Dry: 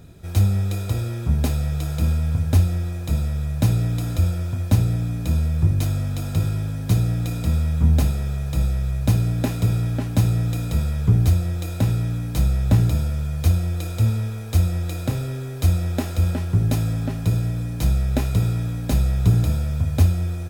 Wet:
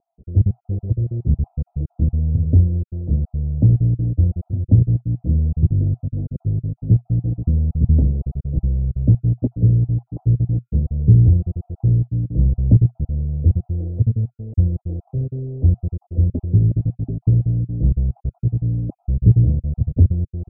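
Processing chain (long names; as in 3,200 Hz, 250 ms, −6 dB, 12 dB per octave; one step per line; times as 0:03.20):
time-frequency cells dropped at random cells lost 34%
dynamic equaliser 120 Hz, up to +4 dB, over −31 dBFS, Q 4.9
inverse Chebyshev low-pass filter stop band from 1,600 Hz, stop band 60 dB
level +3 dB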